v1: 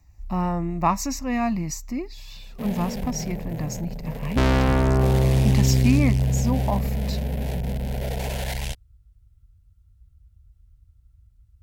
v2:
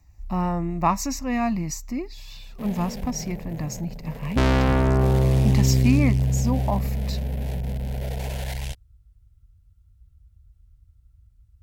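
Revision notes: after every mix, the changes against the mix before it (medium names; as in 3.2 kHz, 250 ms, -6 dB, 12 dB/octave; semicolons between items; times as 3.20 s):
second sound -4.0 dB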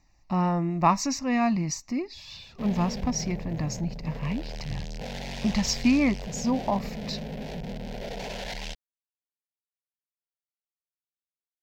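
first sound: muted; master: add resonant high shelf 7.5 kHz -12.5 dB, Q 1.5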